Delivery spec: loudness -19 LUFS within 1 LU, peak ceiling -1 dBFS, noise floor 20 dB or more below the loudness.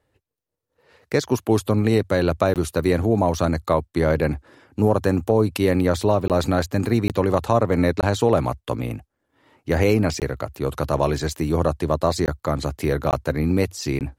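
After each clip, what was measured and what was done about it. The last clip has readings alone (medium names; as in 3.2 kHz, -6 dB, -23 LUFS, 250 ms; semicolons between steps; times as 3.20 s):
dropouts 8; longest dropout 18 ms; loudness -21.5 LUFS; peak level -5.5 dBFS; loudness target -19.0 LUFS
-> interpolate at 2.54/6.28/7.08/8.01/10.20/12.26/13.11/13.99 s, 18 ms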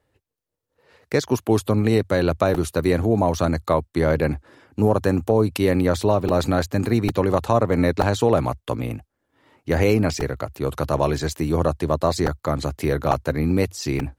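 dropouts 0; loudness -21.5 LUFS; peak level -5.5 dBFS; loudness target -19.0 LUFS
-> trim +2.5 dB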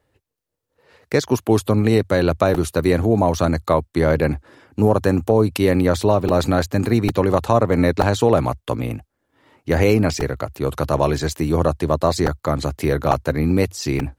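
loudness -19.0 LUFS; peak level -3.0 dBFS; noise floor -76 dBFS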